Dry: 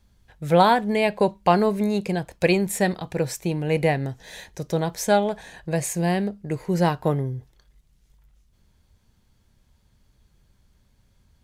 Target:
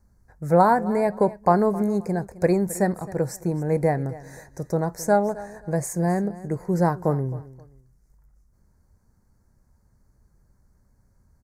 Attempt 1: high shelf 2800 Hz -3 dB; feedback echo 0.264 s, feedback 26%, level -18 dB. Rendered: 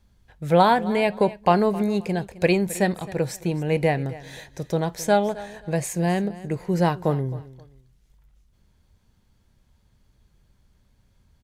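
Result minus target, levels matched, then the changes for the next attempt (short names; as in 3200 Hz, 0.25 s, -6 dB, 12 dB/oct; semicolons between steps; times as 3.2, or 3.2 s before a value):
4000 Hz band +13.0 dB
add first: Butterworth band-stop 3100 Hz, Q 0.8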